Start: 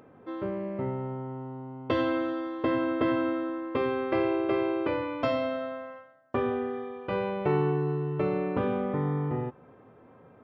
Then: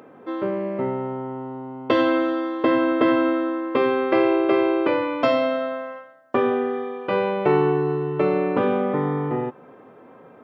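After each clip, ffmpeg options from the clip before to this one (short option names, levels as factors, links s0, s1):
-af "highpass=210,volume=2.66"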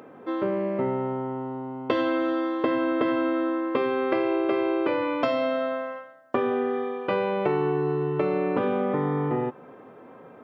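-af "acompressor=threshold=0.0891:ratio=5"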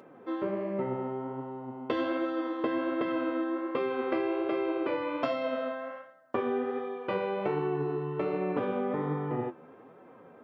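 -af "flanger=delay=5.2:depth=7.5:regen=53:speed=1.3:shape=sinusoidal,volume=0.794"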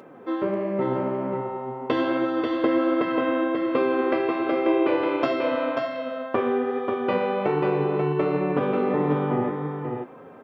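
-af "aecho=1:1:538:0.596,volume=2.11"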